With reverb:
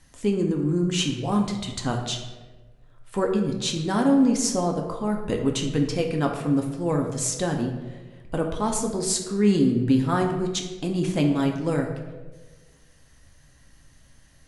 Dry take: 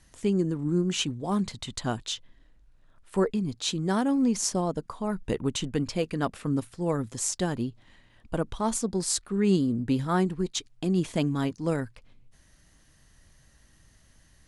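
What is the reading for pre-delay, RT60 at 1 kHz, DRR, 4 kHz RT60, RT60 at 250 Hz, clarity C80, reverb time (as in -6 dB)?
4 ms, 1.1 s, 1.5 dB, 0.75 s, 1.3 s, 8.0 dB, 1.3 s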